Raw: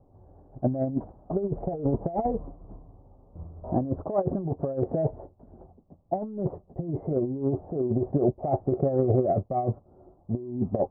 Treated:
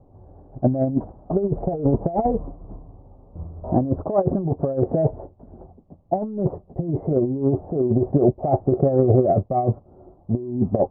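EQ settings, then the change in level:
high-frequency loss of the air 310 metres
+7.0 dB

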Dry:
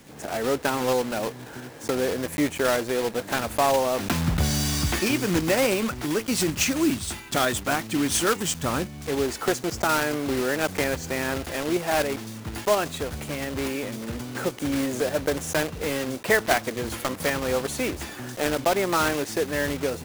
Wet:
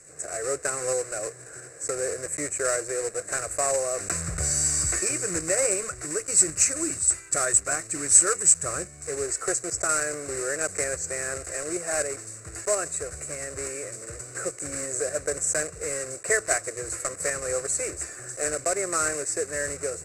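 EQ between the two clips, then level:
low-pass with resonance 7,900 Hz, resonance Q 14
low-shelf EQ 120 Hz −4.5 dB
phaser with its sweep stopped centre 890 Hz, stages 6
−3.0 dB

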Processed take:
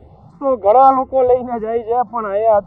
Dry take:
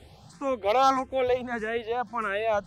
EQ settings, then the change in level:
dynamic equaliser 730 Hz, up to +6 dB, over −36 dBFS, Q 0.99
Savitzky-Golay smoothing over 65 samples
+8.5 dB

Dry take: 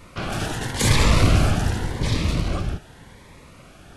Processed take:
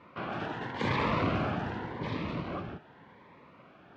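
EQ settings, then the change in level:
band-pass filter 180–2,700 Hz
high-frequency loss of the air 120 metres
parametric band 990 Hz +5 dB 0.37 octaves
−6.5 dB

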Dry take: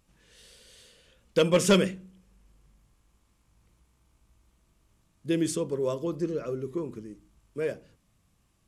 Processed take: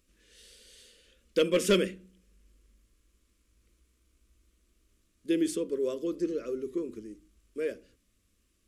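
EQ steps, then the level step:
dynamic equaliser 6,500 Hz, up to −6 dB, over −49 dBFS, Q 0.95
phaser with its sweep stopped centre 340 Hz, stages 4
0.0 dB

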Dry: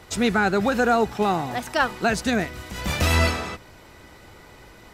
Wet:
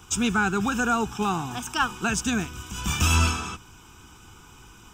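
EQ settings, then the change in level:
high-shelf EQ 5,300 Hz +10 dB
phaser with its sweep stopped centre 2,900 Hz, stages 8
0.0 dB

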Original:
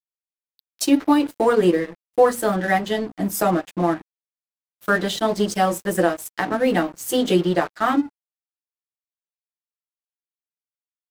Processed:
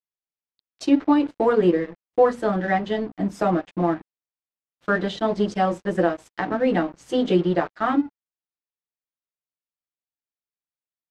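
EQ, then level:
head-to-tape spacing loss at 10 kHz 36 dB
high-shelf EQ 3,500 Hz +11.5 dB
0.0 dB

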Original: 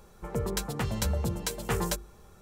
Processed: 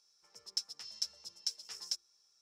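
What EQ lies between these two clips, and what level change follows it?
resonant band-pass 5,300 Hz, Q 14
+9.5 dB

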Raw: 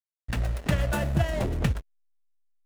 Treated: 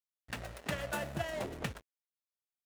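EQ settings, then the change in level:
high-pass filter 430 Hz 6 dB per octave
−5.5 dB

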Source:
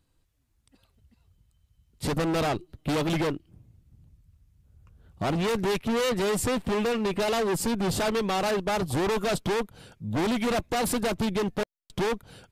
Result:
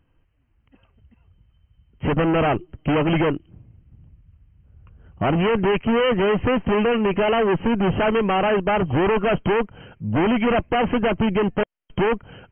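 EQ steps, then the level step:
linear-phase brick-wall low-pass 3,200 Hz
+7.0 dB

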